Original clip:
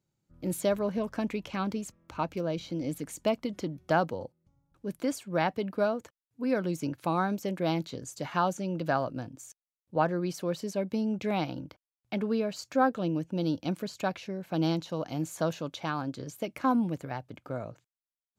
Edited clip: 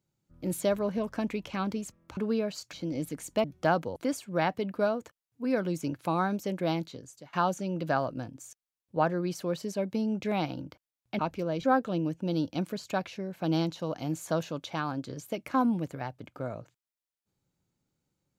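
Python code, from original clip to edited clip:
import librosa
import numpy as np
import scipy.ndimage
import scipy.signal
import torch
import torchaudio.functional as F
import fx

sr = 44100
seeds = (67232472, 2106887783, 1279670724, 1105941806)

y = fx.edit(x, sr, fx.swap(start_s=2.17, length_s=0.45, other_s=12.18, other_length_s=0.56),
    fx.cut(start_s=3.33, length_s=0.37),
    fx.cut(start_s=4.22, length_s=0.73),
    fx.fade_out_to(start_s=7.65, length_s=0.67, floor_db=-21.5), tone=tone)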